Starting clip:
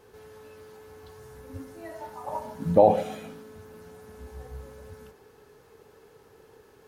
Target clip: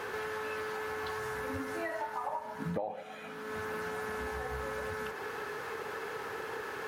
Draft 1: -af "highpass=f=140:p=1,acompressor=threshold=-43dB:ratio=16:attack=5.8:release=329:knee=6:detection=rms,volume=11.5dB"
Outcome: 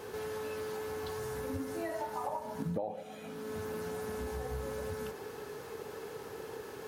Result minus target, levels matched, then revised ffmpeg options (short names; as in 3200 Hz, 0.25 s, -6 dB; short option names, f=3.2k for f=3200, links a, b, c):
2000 Hz band -8.0 dB
-af "highpass=f=140:p=1,equalizer=f=1.6k:w=0.57:g=14,acompressor=threshold=-43dB:ratio=16:attack=5.8:release=329:knee=6:detection=rms,volume=11.5dB"